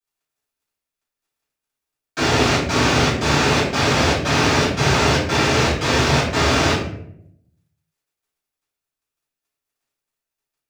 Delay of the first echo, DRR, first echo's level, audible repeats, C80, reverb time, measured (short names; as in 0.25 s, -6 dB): none, -12.0 dB, none, none, 7.0 dB, 0.70 s